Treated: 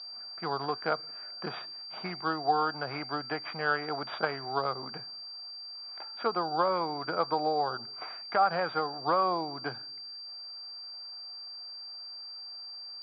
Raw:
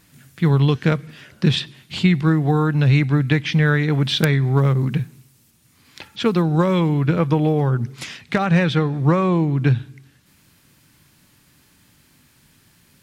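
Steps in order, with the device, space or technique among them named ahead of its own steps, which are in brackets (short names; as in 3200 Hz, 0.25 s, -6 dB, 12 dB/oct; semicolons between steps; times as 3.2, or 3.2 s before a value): toy sound module (decimation joined by straight lines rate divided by 6×; pulse-width modulation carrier 4700 Hz; speaker cabinet 710–3500 Hz, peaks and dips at 720 Hz +9 dB, 1300 Hz +5 dB, 1900 Hz -9 dB, 2800 Hz -10 dB); gain -3 dB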